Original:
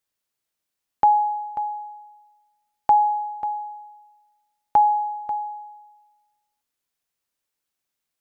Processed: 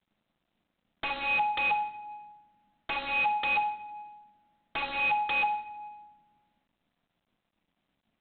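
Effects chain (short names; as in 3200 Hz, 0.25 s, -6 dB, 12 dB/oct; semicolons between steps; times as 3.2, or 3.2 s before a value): EQ curve 140 Hz 0 dB, 210 Hz +12 dB, 700 Hz 0 dB, 1400 Hz -29 dB, 2600 Hz -13 dB; in parallel at -0.5 dB: compressor 12:1, threshold -34 dBFS, peak gain reduction 14.5 dB; on the sum: sine folder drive 10 dB, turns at -8 dBFS; envelope phaser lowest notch 430 Hz, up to 1300 Hz, full sweep at -17 dBFS; wrapped overs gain 21 dB; on a send at -7 dB: reverb RT60 1.0 s, pre-delay 6 ms; on the sum: careless resampling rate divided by 2×, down none, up hold; G.726 32 kbps 8000 Hz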